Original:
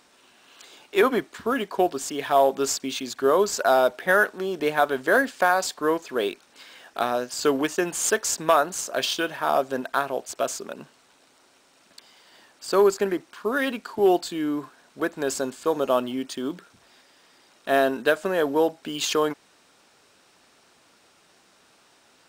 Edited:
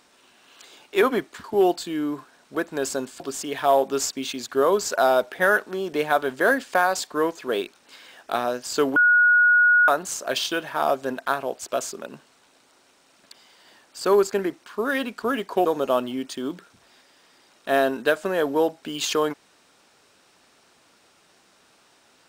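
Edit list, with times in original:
1.44–1.87 s: swap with 13.89–15.65 s
7.63–8.55 s: bleep 1.45 kHz -13 dBFS

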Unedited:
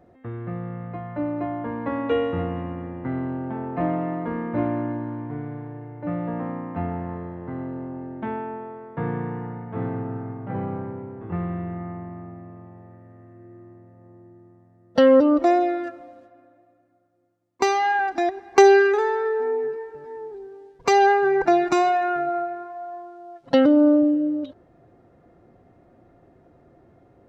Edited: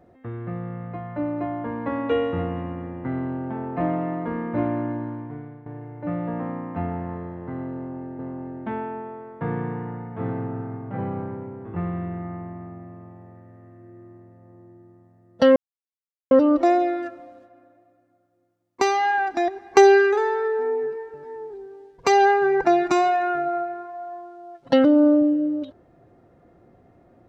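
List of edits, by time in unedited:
5.04–5.66 s: fade out linear, to -12 dB
7.75–8.19 s: loop, 2 plays
15.12 s: insert silence 0.75 s

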